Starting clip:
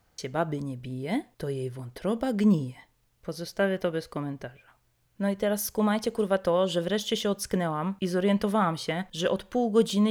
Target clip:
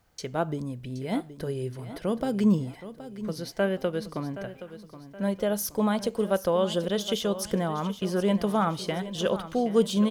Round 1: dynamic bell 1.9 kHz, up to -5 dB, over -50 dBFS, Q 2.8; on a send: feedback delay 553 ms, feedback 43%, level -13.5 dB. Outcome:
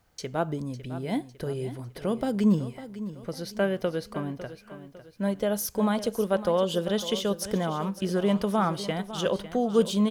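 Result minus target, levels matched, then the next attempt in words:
echo 219 ms early
dynamic bell 1.9 kHz, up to -5 dB, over -50 dBFS, Q 2.8; on a send: feedback delay 772 ms, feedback 43%, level -13.5 dB

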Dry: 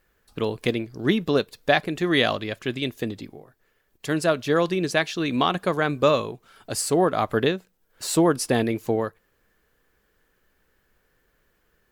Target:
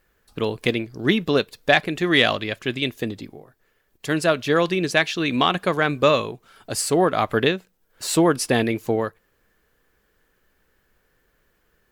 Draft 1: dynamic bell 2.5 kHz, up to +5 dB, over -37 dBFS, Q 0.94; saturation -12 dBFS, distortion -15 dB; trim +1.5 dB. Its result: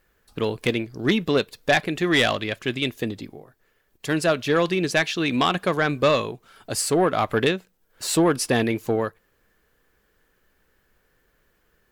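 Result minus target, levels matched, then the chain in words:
saturation: distortion +15 dB
dynamic bell 2.5 kHz, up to +5 dB, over -37 dBFS, Q 0.94; saturation -1 dBFS, distortion -31 dB; trim +1.5 dB

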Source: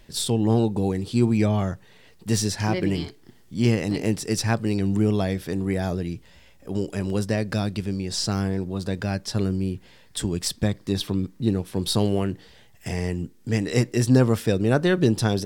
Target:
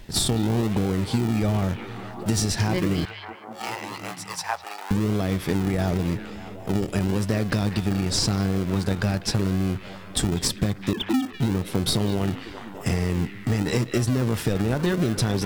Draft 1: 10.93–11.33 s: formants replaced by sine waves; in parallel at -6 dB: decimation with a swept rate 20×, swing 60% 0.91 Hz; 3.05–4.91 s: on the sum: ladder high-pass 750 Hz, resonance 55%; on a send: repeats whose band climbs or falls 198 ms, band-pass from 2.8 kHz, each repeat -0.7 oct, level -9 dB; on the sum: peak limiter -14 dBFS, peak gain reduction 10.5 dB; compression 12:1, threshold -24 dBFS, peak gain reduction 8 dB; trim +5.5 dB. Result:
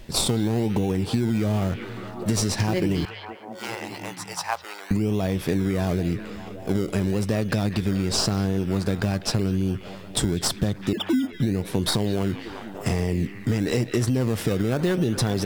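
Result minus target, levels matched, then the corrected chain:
decimation with a swept rate: distortion -12 dB
10.93–11.33 s: formants replaced by sine waves; in parallel at -6 dB: decimation with a swept rate 67×, swing 60% 0.91 Hz; 3.05–4.91 s: on the sum: ladder high-pass 750 Hz, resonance 55%; on a send: repeats whose band climbs or falls 198 ms, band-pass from 2.8 kHz, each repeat -0.7 oct, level -9 dB; on the sum: peak limiter -14 dBFS, peak gain reduction 9.5 dB; compression 12:1, threshold -24 dBFS, peak gain reduction 8 dB; trim +5.5 dB

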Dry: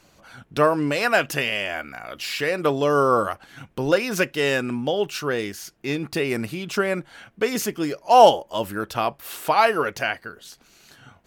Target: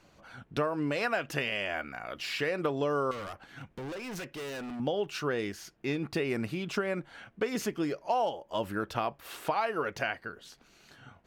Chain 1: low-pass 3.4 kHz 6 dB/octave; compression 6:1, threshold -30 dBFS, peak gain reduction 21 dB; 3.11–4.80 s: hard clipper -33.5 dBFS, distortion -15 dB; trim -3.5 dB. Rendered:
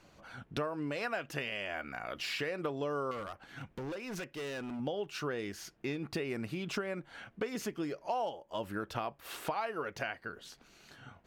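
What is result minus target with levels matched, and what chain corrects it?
compression: peak gain reduction +6 dB
low-pass 3.4 kHz 6 dB/octave; compression 6:1, threshold -23 dBFS, peak gain reduction 15.5 dB; 3.11–4.80 s: hard clipper -33.5 dBFS, distortion -11 dB; trim -3.5 dB

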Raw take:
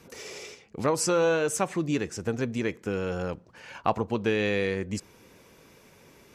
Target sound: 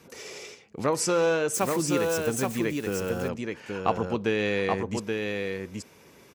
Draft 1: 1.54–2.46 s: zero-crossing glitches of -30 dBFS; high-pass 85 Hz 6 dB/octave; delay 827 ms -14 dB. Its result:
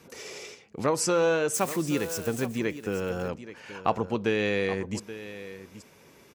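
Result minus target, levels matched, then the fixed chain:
echo-to-direct -10 dB
1.54–2.46 s: zero-crossing glitches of -30 dBFS; high-pass 85 Hz 6 dB/octave; delay 827 ms -4 dB

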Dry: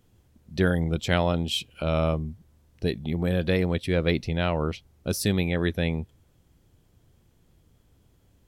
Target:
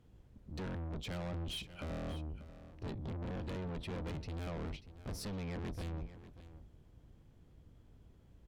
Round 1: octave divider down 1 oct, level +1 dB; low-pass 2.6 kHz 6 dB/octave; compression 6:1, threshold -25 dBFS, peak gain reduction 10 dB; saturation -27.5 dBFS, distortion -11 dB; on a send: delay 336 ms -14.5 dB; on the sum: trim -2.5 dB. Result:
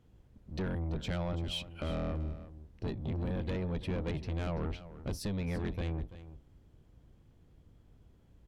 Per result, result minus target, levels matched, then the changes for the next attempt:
echo 253 ms early; saturation: distortion -6 dB
change: delay 589 ms -14.5 dB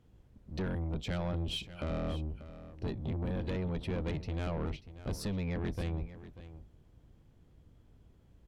saturation: distortion -6 dB
change: saturation -36.5 dBFS, distortion -5 dB

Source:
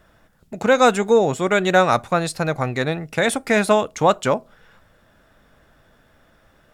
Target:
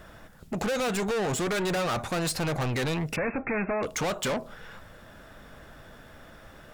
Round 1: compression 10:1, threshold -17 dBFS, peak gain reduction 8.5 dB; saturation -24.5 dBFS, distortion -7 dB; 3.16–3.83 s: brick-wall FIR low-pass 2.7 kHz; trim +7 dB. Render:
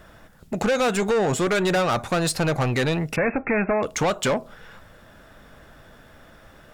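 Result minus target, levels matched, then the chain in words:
saturation: distortion -4 dB
compression 10:1, threshold -17 dBFS, peak gain reduction 8.5 dB; saturation -33 dBFS, distortion -3 dB; 3.16–3.83 s: brick-wall FIR low-pass 2.7 kHz; trim +7 dB

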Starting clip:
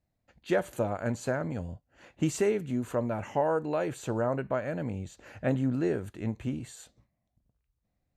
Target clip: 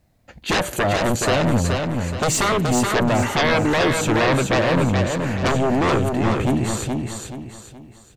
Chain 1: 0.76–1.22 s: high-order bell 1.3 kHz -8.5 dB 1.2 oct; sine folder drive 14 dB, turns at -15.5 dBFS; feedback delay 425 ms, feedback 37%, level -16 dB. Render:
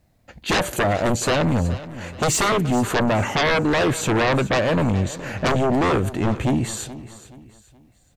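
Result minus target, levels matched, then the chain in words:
echo-to-direct -11.5 dB
0.76–1.22 s: high-order bell 1.3 kHz -8.5 dB 1.2 oct; sine folder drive 14 dB, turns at -15.5 dBFS; feedback delay 425 ms, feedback 37%, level -4.5 dB

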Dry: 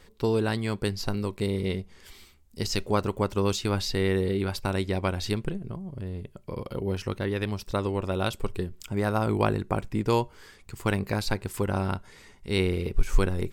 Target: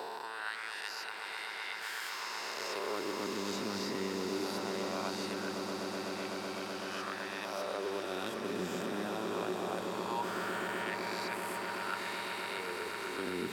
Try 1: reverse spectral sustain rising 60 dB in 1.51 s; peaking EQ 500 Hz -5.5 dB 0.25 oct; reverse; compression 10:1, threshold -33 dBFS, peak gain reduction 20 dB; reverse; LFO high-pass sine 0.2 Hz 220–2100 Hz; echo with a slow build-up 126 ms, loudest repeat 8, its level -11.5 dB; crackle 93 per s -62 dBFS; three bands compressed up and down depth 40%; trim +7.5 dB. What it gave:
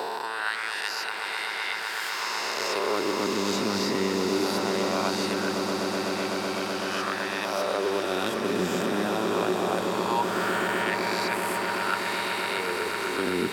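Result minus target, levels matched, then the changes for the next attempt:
compression: peak gain reduction -10.5 dB
change: compression 10:1, threshold -44.5 dBFS, peak gain reduction 30.5 dB

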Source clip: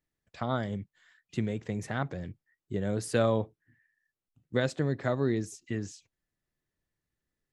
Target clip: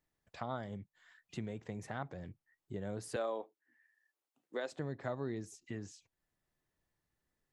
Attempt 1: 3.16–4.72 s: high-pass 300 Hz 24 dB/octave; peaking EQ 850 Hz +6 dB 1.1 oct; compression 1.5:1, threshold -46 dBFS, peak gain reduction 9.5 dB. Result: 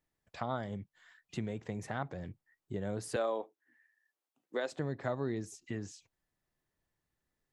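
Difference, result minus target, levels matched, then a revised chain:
compression: peak gain reduction -4 dB
3.16–4.72 s: high-pass 300 Hz 24 dB/octave; peaking EQ 850 Hz +6 dB 1.1 oct; compression 1.5:1, threshold -57.5 dBFS, peak gain reduction 13 dB

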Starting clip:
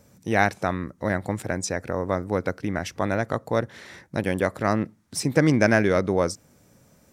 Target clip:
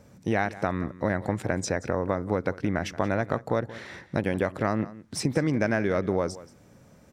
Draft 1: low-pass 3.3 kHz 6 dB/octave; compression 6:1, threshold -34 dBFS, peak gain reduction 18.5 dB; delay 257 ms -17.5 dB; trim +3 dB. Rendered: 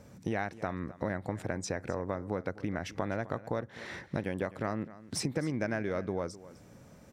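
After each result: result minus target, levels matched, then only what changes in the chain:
echo 78 ms late; compression: peak gain reduction +8 dB
change: delay 179 ms -17.5 dB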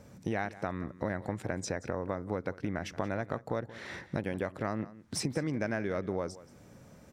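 compression: peak gain reduction +8 dB
change: compression 6:1, threshold -24.5 dBFS, peak gain reduction 10.5 dB

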